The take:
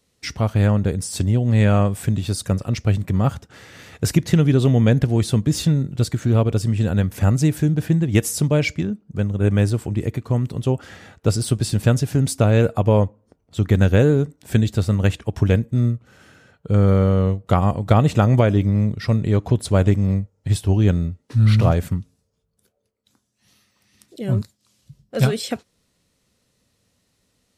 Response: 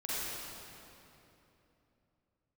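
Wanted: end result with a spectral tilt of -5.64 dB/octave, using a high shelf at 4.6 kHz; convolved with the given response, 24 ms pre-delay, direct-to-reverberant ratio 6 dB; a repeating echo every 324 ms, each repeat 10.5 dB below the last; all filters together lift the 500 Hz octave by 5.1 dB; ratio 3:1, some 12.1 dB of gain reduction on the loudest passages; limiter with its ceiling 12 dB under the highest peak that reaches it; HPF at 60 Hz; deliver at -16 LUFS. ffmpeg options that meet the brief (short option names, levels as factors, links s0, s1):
-filter_complex "[0:a]highpass=60,equalizer=f=500:t=o:g=6,highshelf=f=4600:g=4,acompressor=threshold=0.0501:ratio=3,alimiter=limit=0.0841:level=0:latency=1,aecho=1:1:324|648|972:0.299|0.0896|0.0269,asplit=2[s0][s1];[1:a]atrim=start_sample=2205,adelay=24[s2];[s1][s2]afir=irnorm=-1:irlink=0,volume=0.266[s3];[s0][s3]amix=inputs=2:normalize=0,volume=5.62"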